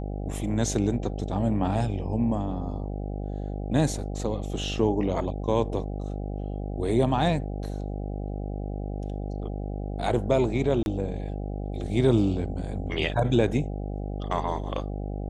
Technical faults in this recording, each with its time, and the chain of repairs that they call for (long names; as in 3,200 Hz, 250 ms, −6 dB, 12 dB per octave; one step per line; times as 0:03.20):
mains buzz 50 Hz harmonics 16 −32 dBFS
0:10.83–0:10.86: drop-out 31 ms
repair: hum removal 50 Hz, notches 16
repair the gap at 0:10.83, 31 ms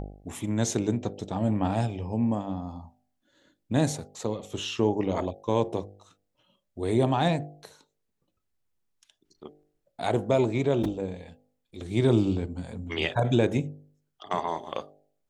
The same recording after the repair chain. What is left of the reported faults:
none of them is left